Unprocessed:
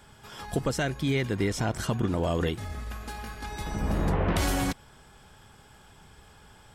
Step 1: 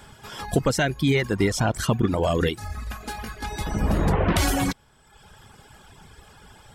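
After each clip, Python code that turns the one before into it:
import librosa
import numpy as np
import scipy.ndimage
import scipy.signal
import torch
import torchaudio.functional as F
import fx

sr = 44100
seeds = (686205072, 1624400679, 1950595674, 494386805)

y = fx.dereverb_blind(x, sr, rt60_s=1.0)
y = y * librosa.db_to_amplitude(7.0)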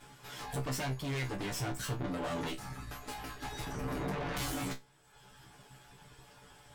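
y = fx.lower_of_two(x, sr, delay_ms=6.9)
y = 10.0 ** (-27.0 / 20.0) * np.tanh(y / 10.0 ** (-27.0 / 20.0))
y = fx.comb_fb(y, sr, f0_hz=65.0, decay_s=0.19, harmonics='all', damping=0.0, mix_pct=100)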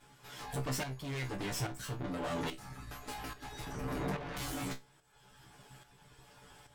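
y = fx.tremolo_shape(x, sr, shape='saw_up', hz=1.2, depth_pct=60)
y = y * librosa.db_to_amplitude(1.0)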